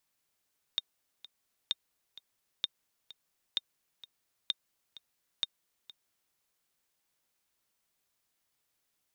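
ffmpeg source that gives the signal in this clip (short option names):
-f lavfi -i "aevalsrc='pow(10,(-16.5-18.5*gte(mod(t,2*60/129),60/129))/20)*sin(2*PI*3670*mod(t,60/129))*exp(-6.91*mod(t,60/129)/0.03)':d=5.58:s=44100"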